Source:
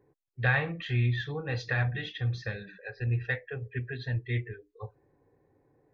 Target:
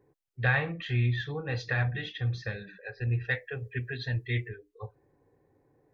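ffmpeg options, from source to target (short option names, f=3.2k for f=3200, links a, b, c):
-filter_complex "[0:a]asettb=1/sr,asplit=3[a][b][c];[a]atrim=end=3.314[d];[b]atrim=start=3.31:end=4.5,asetpts=PTS-STARTPTS,afade=t=in:d=0.004:c=qsin,afade=t=out:st=1.186:d=0.004:c=qsin,highshelf=f=2.8k:g=8.5[e];[c]atrim=start=4.496[f];[d][e]acrossfade=d=0.004:c1=hsin:c2=qsin[g];[g][f]acrossfade=d=0.004:c1=qsin:c2=hsin"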